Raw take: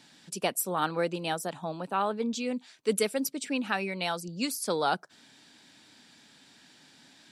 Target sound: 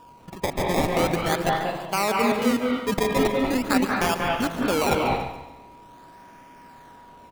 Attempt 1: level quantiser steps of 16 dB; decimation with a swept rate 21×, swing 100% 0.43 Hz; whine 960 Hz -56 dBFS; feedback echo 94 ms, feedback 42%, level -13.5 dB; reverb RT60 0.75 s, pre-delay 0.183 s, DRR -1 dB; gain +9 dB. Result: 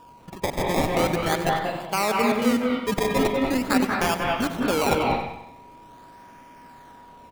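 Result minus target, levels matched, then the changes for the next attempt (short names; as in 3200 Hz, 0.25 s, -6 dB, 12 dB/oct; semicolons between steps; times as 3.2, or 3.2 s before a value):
echo 48 ms early
change: feedback echo 0.142 s, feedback 42%, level -13.5 dB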